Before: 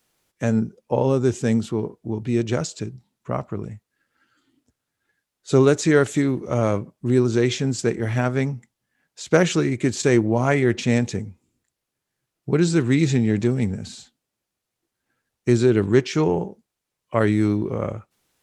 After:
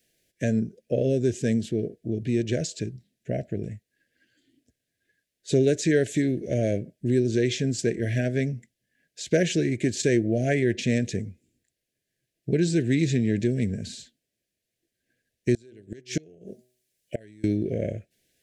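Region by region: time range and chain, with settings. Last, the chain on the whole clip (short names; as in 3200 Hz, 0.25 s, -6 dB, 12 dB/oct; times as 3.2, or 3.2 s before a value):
15.54–17.44 high shelf 4300 Hz +10.5 dB + de-hum 125 Hz, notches 8 + flipped gate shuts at -11 dBFS, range -30 dB
whole clip: Chebyshev band-stop 680–1600 Hz, order 4; compressor 1.5:1, threshold -25 dBFS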